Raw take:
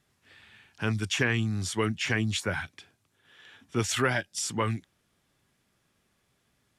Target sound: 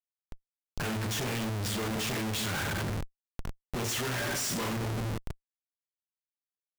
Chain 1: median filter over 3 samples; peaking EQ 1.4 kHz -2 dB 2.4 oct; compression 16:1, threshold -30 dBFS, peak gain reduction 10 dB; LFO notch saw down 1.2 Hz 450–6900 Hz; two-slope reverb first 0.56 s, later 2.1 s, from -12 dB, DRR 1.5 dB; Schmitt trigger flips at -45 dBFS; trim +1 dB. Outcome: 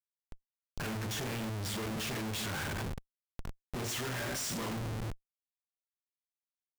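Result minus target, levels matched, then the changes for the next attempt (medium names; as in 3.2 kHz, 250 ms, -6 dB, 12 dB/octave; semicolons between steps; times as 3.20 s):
compression: peak gain reduction +6 dB
change: compression 16:1, threshold -23.5 dBFS, peak gain reduction 4 dB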